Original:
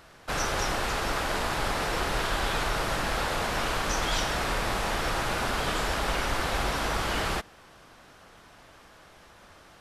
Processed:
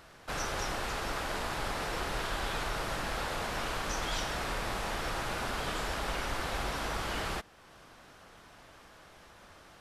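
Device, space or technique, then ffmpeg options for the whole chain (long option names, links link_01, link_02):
parallel compression: -filter_complex "[0:a]asplit=2[link_01][link_02];[link_02]acompressor=threshold=-47dB:ratio=6,volume=-2dB[link_03];[link_01][link_03]amix=inputs=2:normalize=0,volume=-7dB"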